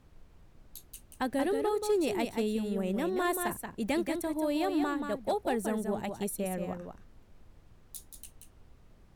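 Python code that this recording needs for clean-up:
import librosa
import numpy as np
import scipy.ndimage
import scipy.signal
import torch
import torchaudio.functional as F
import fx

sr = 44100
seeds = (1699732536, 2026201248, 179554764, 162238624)

y = fx.fix_declip(x, sr, threshold_db=-22.0)
y = fx.noise_reduce(y, sr, print_start_s=8.63, print_end_s=9.13, reduce_db=20.0)
y = fx.fix_echo_inverse(y, sr, delay_ms=180, level_db=-6.0)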